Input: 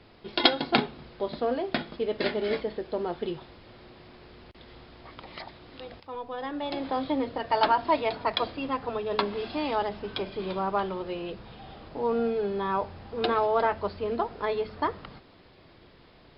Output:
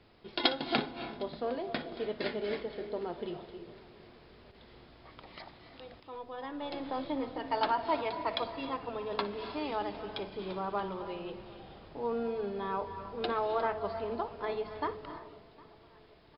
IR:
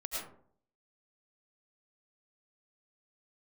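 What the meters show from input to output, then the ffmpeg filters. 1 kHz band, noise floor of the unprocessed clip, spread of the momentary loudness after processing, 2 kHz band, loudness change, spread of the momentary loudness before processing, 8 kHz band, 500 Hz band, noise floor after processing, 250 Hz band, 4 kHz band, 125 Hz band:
−6.5 dB, −55 dBFS, 19 LU, −6.5 dB, −6.5 dB, 19 LU, can't be measured, −6.5 dB, −58 dBFS, −6.5 dB, −6.5 dB, −6.5 dB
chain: -filter_complex "[0:a]aecho=1:1:758|1516|2274|3032:0.0631|0.0372|0.022|0.013,asplit=2[link_01][link_02];[1:a]atrim=start_sample=2205,asetrate=22932,aresample=44100,adelay=59[link_03];[link_02][link_03]afir=irnorm=-1:irlink=0,volume=-15.5dB[link_04];[link_01][link_04]amix=inputs=2:normalize=0,volume=-7dB"

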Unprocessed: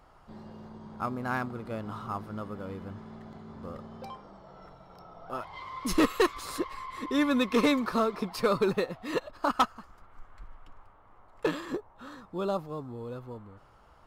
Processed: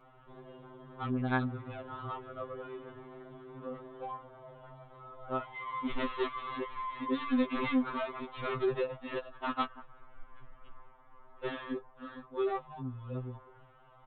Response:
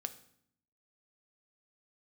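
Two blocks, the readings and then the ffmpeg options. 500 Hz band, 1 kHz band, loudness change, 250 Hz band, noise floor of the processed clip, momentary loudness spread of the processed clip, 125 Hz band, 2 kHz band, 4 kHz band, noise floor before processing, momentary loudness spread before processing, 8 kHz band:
−5.5 dB, −4.5 dB, −5.5 dB, −5.0 dB, −59 dBFS, 20 LU, −1.0 dB, −5.0 dB, −8.5 dB, −58 dBFS, 21 LU, below −35 dB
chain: -af "aresample=8000,asoftclip=type=tanh:threshold=-27dB,aresample=44100,afftfilt=real='re*2.45*eq(mod(b,6),0)':imag='im*2.45*eq(mod(b,6),0)':win_size=2048:overlap=0.75,volume=1dB"

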